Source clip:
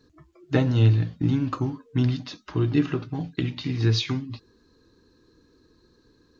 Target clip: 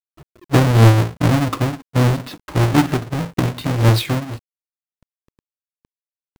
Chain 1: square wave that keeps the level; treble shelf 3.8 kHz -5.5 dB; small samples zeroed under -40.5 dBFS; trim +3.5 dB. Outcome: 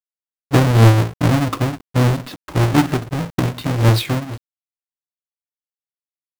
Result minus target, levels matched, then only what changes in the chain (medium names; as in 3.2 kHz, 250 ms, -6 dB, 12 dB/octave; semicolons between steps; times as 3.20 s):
small samples zeroed: distortion +5 dB
change: small samples zeroed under -48.5 dBFS